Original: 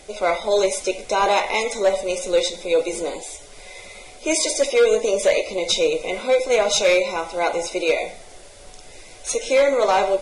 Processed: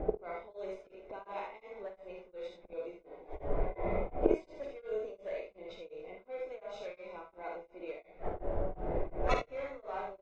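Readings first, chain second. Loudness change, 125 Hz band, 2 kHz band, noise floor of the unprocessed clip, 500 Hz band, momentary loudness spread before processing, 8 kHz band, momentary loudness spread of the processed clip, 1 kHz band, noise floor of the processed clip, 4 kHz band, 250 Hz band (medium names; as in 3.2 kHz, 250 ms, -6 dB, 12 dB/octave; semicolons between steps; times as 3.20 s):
-19.5 dB, no reading, -22.5 dB, -43 dBFS, -18.5 dB, 15 LU, under -40 dB, 14 LU, -17.5 dB, -64 dBFS, -30.5 dB, -12.0 dB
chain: level-controlled noise filter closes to 590 Hz, open at -14.5 dBFS; low-pass 1.9 kHz 12 dB/octave; inverted gate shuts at -27 dBFS, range -35 dB; early reflections 51 ms -4.5 dB, 77 ms -4 dB; two-slope reverb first 0.21 s, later 4.2 s, from -21 dB, DRR 10 dB; tremolo of two beating tones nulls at 2.8 Hz; trim +12.5 dB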